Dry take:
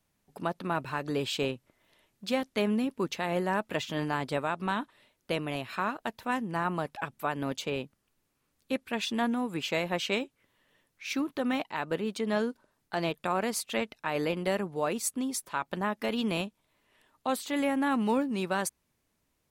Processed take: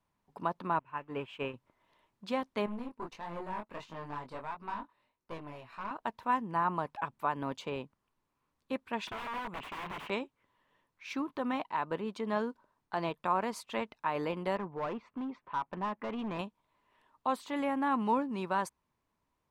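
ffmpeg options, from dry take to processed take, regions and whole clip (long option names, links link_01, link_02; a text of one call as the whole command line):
ffmpeg -i in.wav -filter_complex "[0:a]asettb=1/sr,asplit=3[link_01][link_02][link_03];[link_01]atrim=end=0.794[link_04];[link_02]atrim=start=0.79:end=1.54,asetpts=PTS-STARTPTS,afade=type=in:duration=0.004:curve=qsin,afade=type=out:start_time=0.746:duration=0.004:curve=qsin,aeval=exprs='val(0)+0.5*0.01*sgn(val(0))':channel_layout=same,agate=range=-33dB:threshold=-25dB:ratio=3:release=100:detection=peak,highshelf=frequency=3400:width_type=q:width=3:gain=-7[link_05];[link_03]atrim=start=1.536[link_06];[link_04][link_05]acrossfade=duration=0.004:curve1=hsin:curve2=qsin[link_07];[link_07][link_06]acrossfade=duration=0.004:curve1=qsin:curve2=hsin,asettb=1/sr,asplit=3[link_08][link_09][link_10];[link_08]atrim=end=2.664[link_11];[link_09]atrim=start=2.66:end=5.91,asetpts=PTS-STARTPTS,afade=type=in:duration=0.004:curve=qsin,afade=type=out:start_time=3.246:duration=0.004:curve=qsin,bandreject=frequency=3300:width=9.6,flanger=delay=18:depth=6.2:speed=1.5,aeval=exprs='(tanh(31.6*val(0)+0.75)-tanh(0.75))/31.6':channel_layout=same[link_12];[link_10]atrim=start=5.906[link_13];[link_11][link_12]acrossfade=duration=0.004:curve1=hsin:curve2=qsin[link_14];[link_14][link_13]acrossfade=duration=0.004:curve1=qsin:curve2=hsin,asettb=1/sr,asplit=3[link_15][link_16][link_17];[link_15]atrim=end=9.074[link_18];[link_16]atrim=start=9.07:end=10.1,asetpts=PTS-STARTPTS,afade=type=in:duration=0.004:curve=qsin,afade=type=out:start_time=1.026:duration=0.004:curve=qsin,aeval=exprs='(mod(37.6*val(0)+1,2)-1)/37.6':channel_layout=same,highshelf=frequency=3700:width_type=q:width=1.5:gain=-9[link_19];[link_17]atrim=start=10.096[link_20];[link_18][link_19]acrossfade=duration=0.004:curve1=hsin:curve2=qsin[link_21];[link_21][link_20]acrossfade=duration=0.004:curve1=qsin:curve2=hsin,asettb=1/sr,asplit=3[link_22][link_23][link_24];[link_22]atrim=end=14.564[link_25];[link_23]atrim=start=14.56:end=16.39,asetpts=PTS-STARTPTS,afade=type=in:duration=0.004:curve=qsin,afade=type=out:start_time=1.826:duration=0.004:curve=qsin,lowpass=frequency=2700:width=0.5412,lowpass=frequency=2700:width=1.3066,volume=29dB,asoftclip=hard,volume=-29dB[link_26];[link_24]atrim=start=16.386[link_27];[link_25][link_26]acrossfade=duration=0.004:curve1=hsin:curve2=qsin[link_28];[link_28][link_27]acrossfade=duration=0.004:curve1=qsin:curve2=hsin,lowpass=frequency=3000:poles=1,equalizer=frequency=1000:width_type=o:width=0.48:gain=11,volume=-5dB" out.wav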